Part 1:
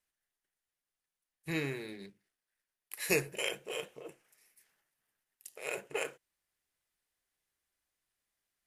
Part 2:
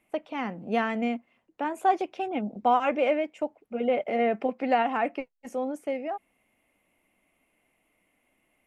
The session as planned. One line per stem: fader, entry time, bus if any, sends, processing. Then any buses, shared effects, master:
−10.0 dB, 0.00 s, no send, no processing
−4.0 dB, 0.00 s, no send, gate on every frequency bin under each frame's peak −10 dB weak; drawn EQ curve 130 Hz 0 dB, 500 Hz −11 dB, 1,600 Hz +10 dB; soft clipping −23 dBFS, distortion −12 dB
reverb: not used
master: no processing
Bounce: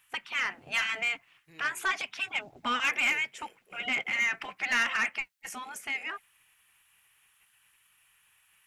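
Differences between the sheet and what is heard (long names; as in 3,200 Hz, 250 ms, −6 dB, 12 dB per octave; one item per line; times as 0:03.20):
stem 1 −10.0 dB → −21.0 dB
stem 2 −4.0 dB → +2.5 dB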